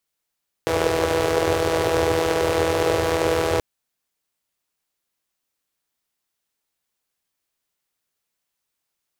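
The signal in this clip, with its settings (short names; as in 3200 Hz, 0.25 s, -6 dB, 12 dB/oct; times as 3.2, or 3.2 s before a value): four-cylinder engine model, steady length 2.93 s, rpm 4900, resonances 92/440 Hz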